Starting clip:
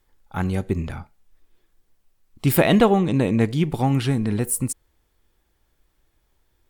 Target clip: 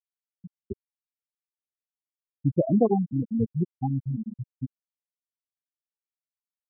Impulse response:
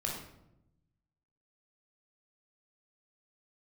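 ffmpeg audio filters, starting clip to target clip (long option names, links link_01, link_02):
-af "anlmdn=100,afftfilt=real='re*gte(hypot(re,im),0.794)':imag='im*gte(hypot(re,im),0.794)':win_size=1024:overlap=0.75,volume=-4dB"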